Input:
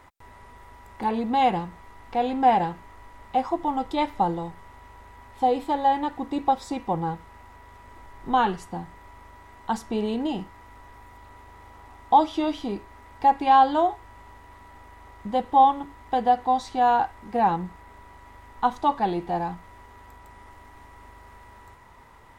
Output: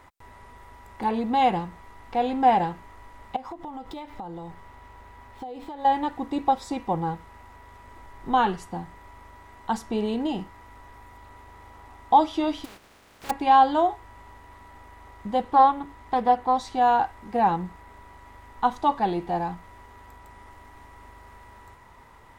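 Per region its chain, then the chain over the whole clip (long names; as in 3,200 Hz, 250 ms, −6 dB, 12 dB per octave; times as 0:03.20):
0:03.36–0:05.85: running median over 5 samples + downward compressor 12 to 1, threshold −33 dBFS
0:12.64–0:13.29: compressing power law on the bin magnitudes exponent 0.13 + low-pass filter 1,500 Hz 6 dB per octave + downward compressor 2.5 to 1, threshold −47 dBFS
0:15.42–0:16.57: dynamic equaliser 5,000 Hz, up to −4 dB, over −43 dBFS, Q 0.98 + highs frequency-modulated by the lows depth 0.17 ms
whole clip: no processing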